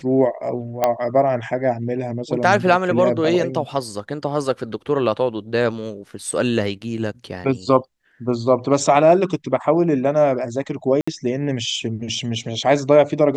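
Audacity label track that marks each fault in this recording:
0.840000	0.840000	pop -4 dBFS
11.010000	11.070000	gap 65 ms

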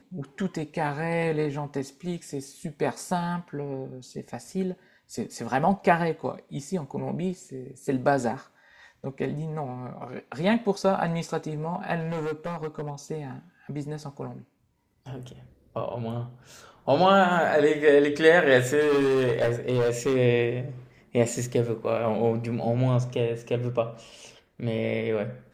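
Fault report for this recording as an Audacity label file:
11.990000	12.900000	clipped -26.5 dBFS
18.800000	20.170000	clipped -19 dBFS

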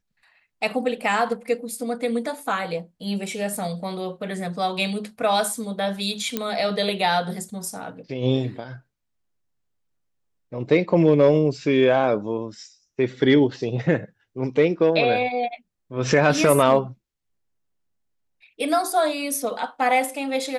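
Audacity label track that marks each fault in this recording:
6.370000	6.370000	pop -9 dBFS

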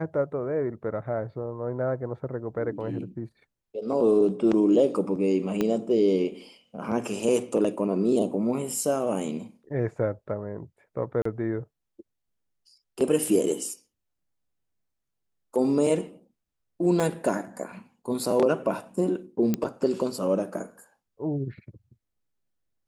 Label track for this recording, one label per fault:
5.610000	5.610000	pop -13 dBFS
11.220000	11.250000	gap 34 ms
17.000000	17.000000	gap 2.3 ms
19.540000	19.540000	pop -12 dBFS

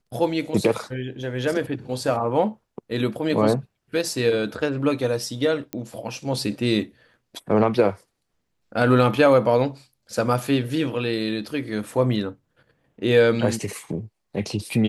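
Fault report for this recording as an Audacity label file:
5.730000	5.730000	pop -15 dBFS

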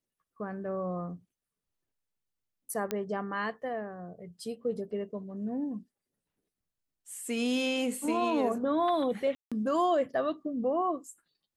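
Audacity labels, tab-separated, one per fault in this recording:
2.910000	2.910000	pop -16 dBFS
9.350000	9.520000	gap 0.166 s

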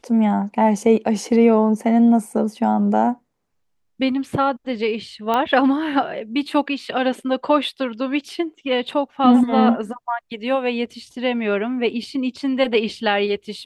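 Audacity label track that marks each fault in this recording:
5.340000	5.340000	pop -9 dBFS

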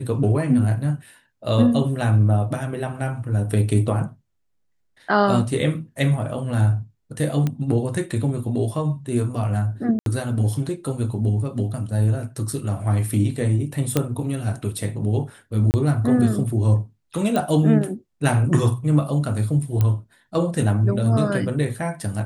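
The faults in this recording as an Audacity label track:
7.470000	7.470000	pop -12 dBFS
9.990000	10.060000	gap 72 ms
13.970000	13.970000	pop -5 dBFS
15.710000	15.740000	gap 29 ms
17.360000	17.360000	pop -10 dBFS
19.810000	19.810000	pop -9 dBFS

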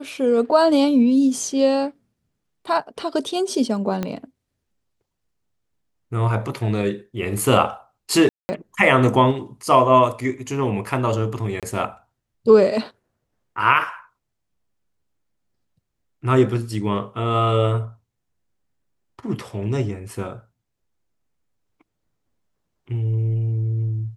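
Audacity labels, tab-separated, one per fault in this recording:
4.030000	4.030000	pop -12 dBFS
8.290000	8.490000	gap 0.2 s
11.600000	11.630000	gap 27 ms

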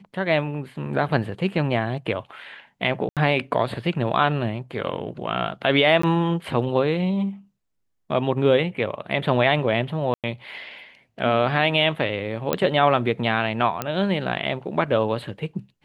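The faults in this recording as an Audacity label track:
3.090000	3.170000	gap 77 ms
6.020000	6.030000	gap 14 ms
10.140000	10.240000	gap 97 ms
12.530000	12.530000	pop -7 dBFS
13.820000	13.820000	pop -10 dBFS

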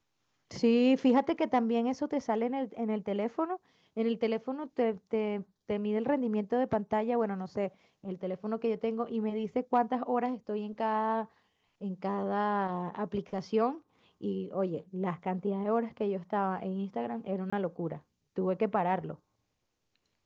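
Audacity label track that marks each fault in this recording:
17.500000	17.520000	gap 25 ms

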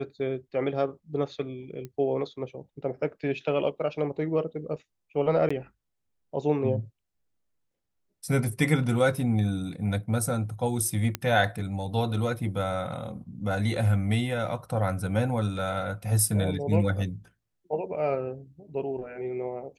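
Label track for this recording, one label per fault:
1.850000	1.850000	pop -25 dBFS
5.490000	5.500000	gap 15 ms
11.150000	11.150000	pop -12 dBFS

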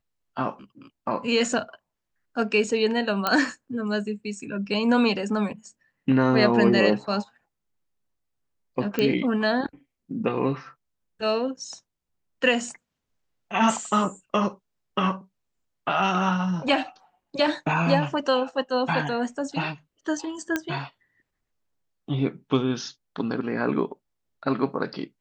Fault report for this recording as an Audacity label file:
3.270000	3.270000	pop -8 dBFS
8.990000	8.990000	pop -11 dBFS
20.560000	20.560000	pop -11 dBFS

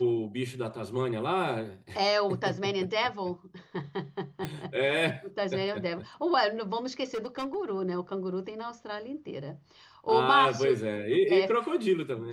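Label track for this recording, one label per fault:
4.450000	4.450000	pop -18 dBFS
7.140000	7.560000	clipped -29 dBFS

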